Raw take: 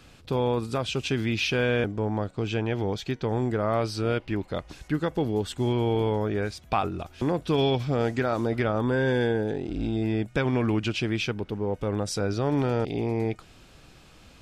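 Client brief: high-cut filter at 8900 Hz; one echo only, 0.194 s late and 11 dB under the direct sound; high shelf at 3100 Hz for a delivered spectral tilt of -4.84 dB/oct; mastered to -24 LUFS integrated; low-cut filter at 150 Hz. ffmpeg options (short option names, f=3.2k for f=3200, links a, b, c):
-af "highpass=150,lowpass=8.9k,highshelf=f=3.1k:g=7.5,aecho=1:1:194:0.282,volume=3dB"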